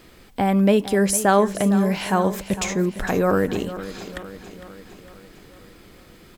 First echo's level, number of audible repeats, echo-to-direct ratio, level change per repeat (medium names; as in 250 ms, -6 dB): -13.5 dB, 5, -12.0 dB, -5.0 dB